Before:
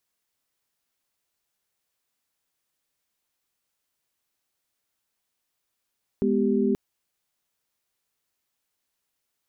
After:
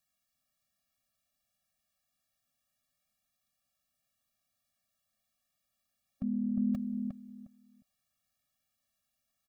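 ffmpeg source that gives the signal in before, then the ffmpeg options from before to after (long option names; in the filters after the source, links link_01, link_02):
-f lavfi -i "aevalsrc='0.0631*(sin(2*PI*207.65*t)+sin(2*PI*246.94*t)+sin(2*PI*392*t))':duration=0.53:sample_rate=44100"
-filter_complex "[0:a]alimiter=limit=-23.5dB:level=0:latency=1:release=79,asplit=2[link_01][link_02];[link_02]adelay=357,lowpass=frequency=1100:poles=1,volume=-3.5dB,asplit=2[link_03][link_04];[link_04]adelay=357,lowpass=frequency=1100:poles=1,volume=0.21,asplit=2[link_05][link_06];[link_06]adelay=357,lowpass=frequency=1100:poles=1,volume=0.21[link_07];[link_03][link_05][link_07]amix=inputs=3:normalize=0[link_08];[link_01][link_08]amix=inputs=2:normalize=0,afftfilt=real='re*eq(mod(floor(b*sr/1024/270),2),0)':imag='im*eq(mod(floor(b*sr/1024/270),2),0)':win_size=1024:overlap=0.75"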